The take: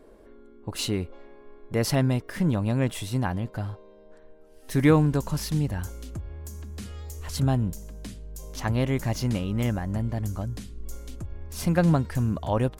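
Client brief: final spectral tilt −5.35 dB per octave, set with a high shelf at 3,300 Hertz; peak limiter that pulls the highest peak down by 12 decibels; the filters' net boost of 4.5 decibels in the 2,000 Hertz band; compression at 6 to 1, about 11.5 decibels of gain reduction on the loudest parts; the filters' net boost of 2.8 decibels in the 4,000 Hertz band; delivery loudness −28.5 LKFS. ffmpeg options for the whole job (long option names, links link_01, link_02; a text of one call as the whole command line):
ffmpeg -i in.wav -af "equalizer=frequency=2000:width_type=o:gain=6,highshelf=frequency=3300:gain=-6.5,equalizer=frequency=4000:width_type=o:gain=6.5,acompressor=threshold=-25dB:ratio=6,volume=9.5dB,alimiter=limit=-18dB:level=0:latency=1" out.wav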